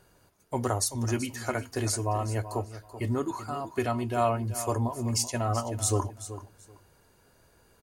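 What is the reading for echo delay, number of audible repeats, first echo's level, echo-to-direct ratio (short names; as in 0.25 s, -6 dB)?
0.382 s, 2, -13.0 dB, -13.0 dB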